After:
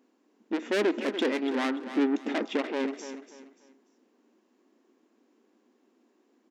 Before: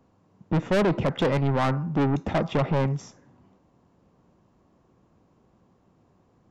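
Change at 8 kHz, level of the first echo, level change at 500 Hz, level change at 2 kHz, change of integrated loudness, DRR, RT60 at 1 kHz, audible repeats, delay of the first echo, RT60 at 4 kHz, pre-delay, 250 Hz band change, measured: can't be measured, −11.0 dB, −3.5 dB, −0.5 dB, −4.5 dB, no reverb audible, no reverb audible, 3, 291 ms, no reverb audible, no reverb audible, −2.0 dB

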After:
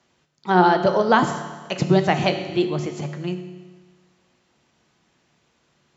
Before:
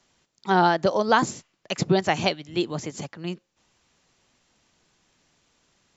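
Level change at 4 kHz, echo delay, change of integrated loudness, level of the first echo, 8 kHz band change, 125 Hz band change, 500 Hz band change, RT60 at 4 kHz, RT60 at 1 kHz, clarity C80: 0.0 dB, no echo audible, +3.5 dB, no echo audible, can't be measured, +5.5 dB, +4.0 dB, 1.4 s, 1.4 s, 10.5 dB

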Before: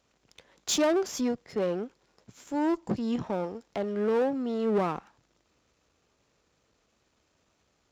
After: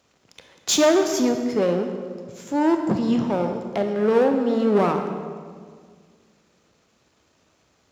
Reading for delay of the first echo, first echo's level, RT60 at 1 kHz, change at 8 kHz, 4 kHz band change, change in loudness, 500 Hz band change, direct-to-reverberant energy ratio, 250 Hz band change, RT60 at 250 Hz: no echo audible, no echo audible, 1.7 s, can't be measured, +8.0 dB, +8.0 dB, +8.0 dB, 5.0 dB, +8.5 dB, 2.3 s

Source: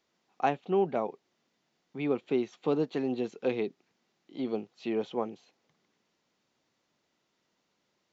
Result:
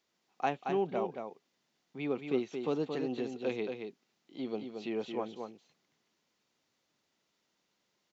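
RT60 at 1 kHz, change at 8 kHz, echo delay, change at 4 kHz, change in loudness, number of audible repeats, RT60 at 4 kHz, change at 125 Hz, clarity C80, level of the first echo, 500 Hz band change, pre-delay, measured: no reverb audible, can't be measured, 225 ms, −0.5 dB, −4.0 dB, 1, no reverb audible, −4.0 dB, no reverb audible, −6.0 dB, −4.0 dB, no reverb audible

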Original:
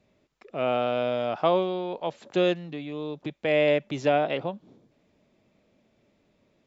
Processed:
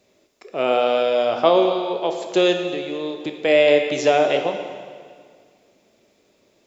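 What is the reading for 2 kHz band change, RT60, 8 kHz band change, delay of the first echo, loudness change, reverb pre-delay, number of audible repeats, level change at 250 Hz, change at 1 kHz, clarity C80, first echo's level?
+7.5 dB, 1.9 s, can't be measured, no echo audible, +7.5 dB, 6 ms, no echo audible, +5.5 dB, +6.5 dB, 7.5 dB, no echo audible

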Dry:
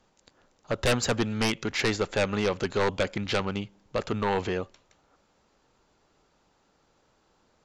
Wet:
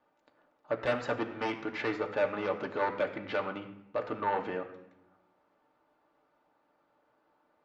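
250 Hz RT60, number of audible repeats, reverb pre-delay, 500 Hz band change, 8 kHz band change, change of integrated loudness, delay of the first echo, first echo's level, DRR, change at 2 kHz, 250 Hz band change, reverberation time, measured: 1.3 s, no echo audible, 3 ms, −4.0 dB, below −25 dB, −5.5 dB, no echo audible, no echo audible, 3.0 dB, −5.5 dB, −8.0 dB, 0.80 s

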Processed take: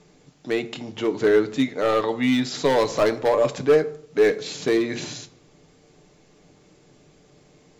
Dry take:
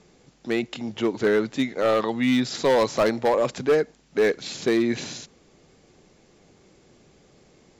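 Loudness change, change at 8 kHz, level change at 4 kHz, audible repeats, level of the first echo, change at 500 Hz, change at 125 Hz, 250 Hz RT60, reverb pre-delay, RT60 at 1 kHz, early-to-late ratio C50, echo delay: +1.5 dB, +0.5 dB, +1.0 dB, no echo audible, no echo audible, +2.0 dB, +1.5 dB, 0.80 s, 7 ms, 0.70 s, 16.5 dB, no echo audible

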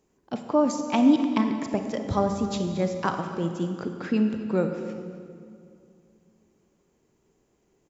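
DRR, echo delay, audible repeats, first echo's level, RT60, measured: 5.5 dB, 256 ms, 1, −17.5 dB, 2.3 s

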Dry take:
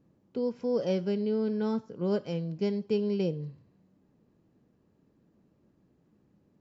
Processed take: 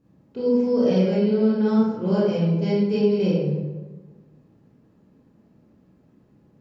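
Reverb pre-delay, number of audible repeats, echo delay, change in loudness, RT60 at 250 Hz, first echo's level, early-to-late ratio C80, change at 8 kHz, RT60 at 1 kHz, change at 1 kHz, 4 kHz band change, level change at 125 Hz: 22 ms, no echo audible, no echo audible, +9.5 dB, 1.4 s, no echo audible, 1.5 dB, can't be measured, 1.2 s, +9.5 dB, +7.5 dB, +11.5 dB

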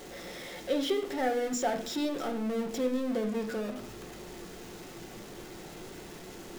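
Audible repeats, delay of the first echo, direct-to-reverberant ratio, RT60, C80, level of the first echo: no echo audible, no echo audible, 4.0 dB, 0.55 s, 14.5 dB, no echo audible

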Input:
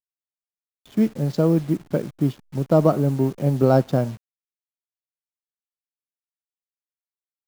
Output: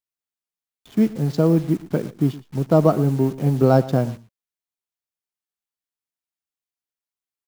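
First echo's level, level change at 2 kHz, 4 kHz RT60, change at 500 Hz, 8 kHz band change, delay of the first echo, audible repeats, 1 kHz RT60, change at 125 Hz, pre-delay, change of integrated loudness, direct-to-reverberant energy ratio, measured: −18.5 dB, +1.5 dB, no reverb audible, +1.0 dB, can't be measured, 116 ms, 1, no reverb audible, +1.5 dB, no reverb audible, +1.5 dB, no reverb audible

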